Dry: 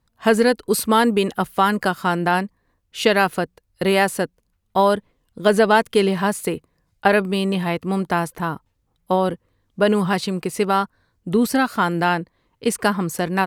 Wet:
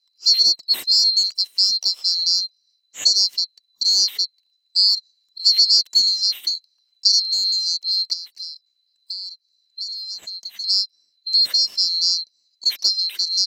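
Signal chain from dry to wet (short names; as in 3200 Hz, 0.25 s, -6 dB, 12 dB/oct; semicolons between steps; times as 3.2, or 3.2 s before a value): band-swap scrambler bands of 4000 Hz; weighting filter D; 8.13–10.64 compressor 3:1, threshold -22 dBFS, peak gain reduction 15 dB; gain -10.5 dB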